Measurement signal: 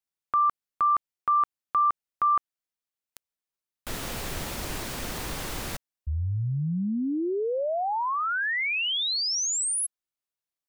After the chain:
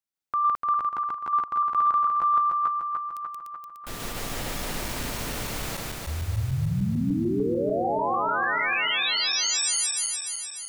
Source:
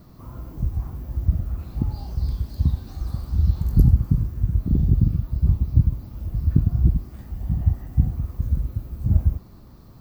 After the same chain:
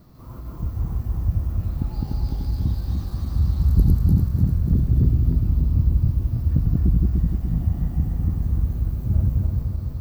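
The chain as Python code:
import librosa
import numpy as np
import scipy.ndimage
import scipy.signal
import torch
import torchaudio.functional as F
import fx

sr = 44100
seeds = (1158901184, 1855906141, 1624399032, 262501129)

y = fx.reverse_delay_fb(x, sr, ms=148, feedback_pct=76, wet_db=-0.5)
y = 10.0 ** (-2.0 / 20.0) * np.tanh(y / 10.0 ** (-2.0 / 20.0))
y = F.gain(torch.from_numpy(y), -2.5).numpy()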